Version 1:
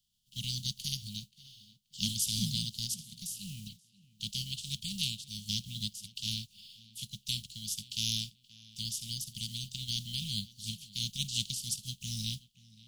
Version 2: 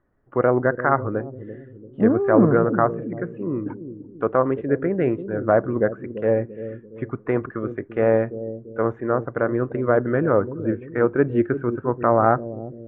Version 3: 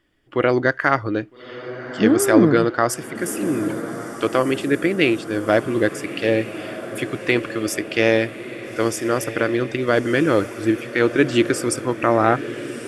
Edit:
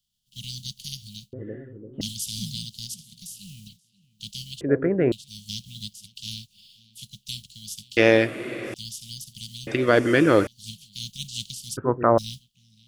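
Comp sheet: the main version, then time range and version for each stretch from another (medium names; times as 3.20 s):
1
1.33–2.01 s: from 2
4.61–5.12 s: from 2
7.97–8.74 s: from 3
9.67–10.47 s: from 3
11.77–12.18 s: from 2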